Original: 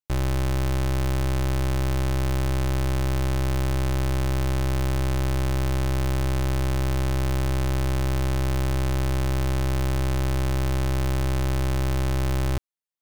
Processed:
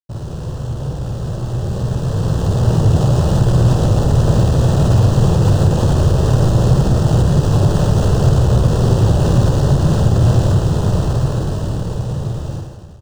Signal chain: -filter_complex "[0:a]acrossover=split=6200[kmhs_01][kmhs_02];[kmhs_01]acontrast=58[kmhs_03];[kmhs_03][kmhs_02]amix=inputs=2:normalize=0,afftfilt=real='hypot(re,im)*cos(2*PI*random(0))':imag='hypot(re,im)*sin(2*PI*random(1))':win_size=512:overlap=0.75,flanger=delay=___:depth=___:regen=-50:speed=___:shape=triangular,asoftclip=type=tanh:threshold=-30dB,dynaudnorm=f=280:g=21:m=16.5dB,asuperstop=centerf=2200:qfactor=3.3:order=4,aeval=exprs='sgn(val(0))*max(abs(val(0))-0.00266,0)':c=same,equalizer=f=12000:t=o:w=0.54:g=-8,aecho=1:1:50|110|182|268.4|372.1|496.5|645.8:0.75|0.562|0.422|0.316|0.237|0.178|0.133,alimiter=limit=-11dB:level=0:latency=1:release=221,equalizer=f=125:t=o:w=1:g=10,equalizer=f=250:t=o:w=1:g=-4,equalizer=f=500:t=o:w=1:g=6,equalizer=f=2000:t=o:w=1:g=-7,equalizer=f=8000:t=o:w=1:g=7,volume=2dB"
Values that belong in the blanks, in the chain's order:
9.6, 9.5, 0.39